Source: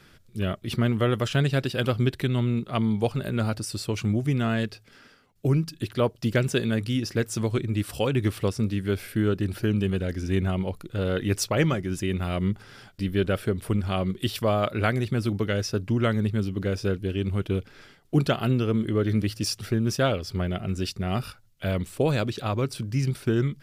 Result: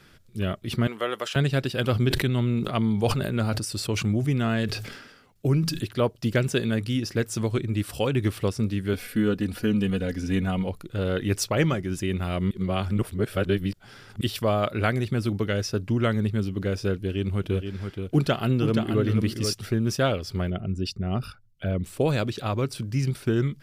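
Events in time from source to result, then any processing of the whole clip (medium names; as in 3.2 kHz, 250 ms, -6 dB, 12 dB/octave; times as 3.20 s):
0.87–1.36 s: high-pass 500 Hz
1.87–5.84 s: decay stretcher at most 55 dB/s
8.93–10.68 s: comb 4.1 ms
12.51–14.21 s: reverse
16.96–19.53 s: delay 476 ms -6.5 dB
20.50–21.84 s: resonances exaggerated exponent 1.5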